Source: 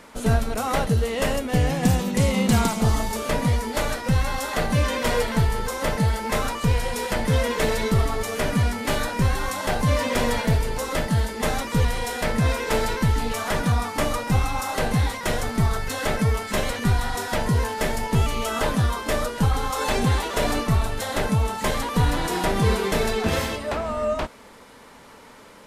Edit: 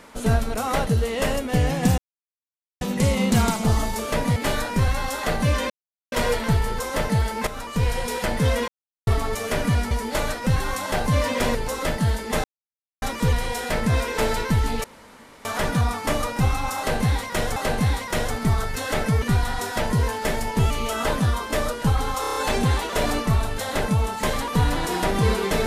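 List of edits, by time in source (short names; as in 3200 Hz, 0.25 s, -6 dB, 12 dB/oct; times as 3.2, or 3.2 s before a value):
1.98 insert silence 0.83 s
3.53–4.18 swap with 8.79–9.31
5 insert silence 0.42 s
6.35–6.78 fade in, from -13 dB
7.56–7.95 mute
10.3–10.65 cut
11.54 insert silence 0.58 s
13.36 insert room tone 0.61 s
14.69–15.47 loop, 2 plays
16.35–16.78 cut
19.77 stutter 0.03 s, 6 plays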